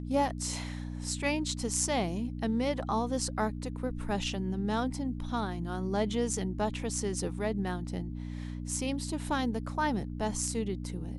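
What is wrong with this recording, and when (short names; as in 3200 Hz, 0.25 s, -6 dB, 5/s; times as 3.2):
hum 60 Hz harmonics 5 -38 dBFS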